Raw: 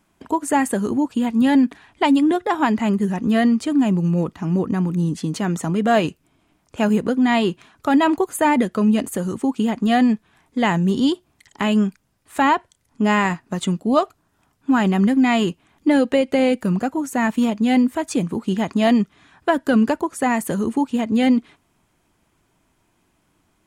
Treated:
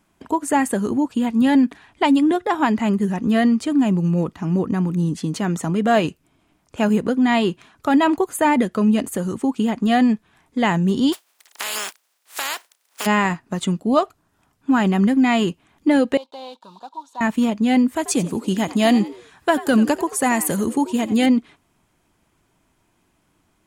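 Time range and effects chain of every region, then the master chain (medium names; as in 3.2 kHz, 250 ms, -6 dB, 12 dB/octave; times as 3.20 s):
11.12–13.05 s: spectral contrast reduction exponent 0.32 + high-pass 620 Hz + compression 3:1, threshold -24 dBFS
16.17–17.21 s: block-companded coder 5-bit + two resonant band-passes 1.9 kHz, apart 2 oct + peaking EQ 1.8 kHz +9 dB 0.32 oct
17.96–21.26 s: treble shelf 4.6 kHz +11 dB + frequency-shifting echo 88 ms, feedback 32%, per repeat +81 Hz, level -16 dB
whole clip: none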